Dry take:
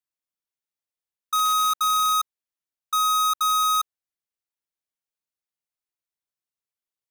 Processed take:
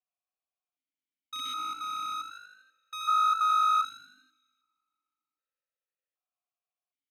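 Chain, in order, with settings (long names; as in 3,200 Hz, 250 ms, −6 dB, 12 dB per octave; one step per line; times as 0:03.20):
echo with shifted repeats 81 ms, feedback 51%, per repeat +51 Hz, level −7 dB
on a send at −20 dB: convolution reverb RT60 2.5 s, pre-delay 6 ms
on the sum: formant filter that steps through the vowels 1.3 Hz
level +8.5 dB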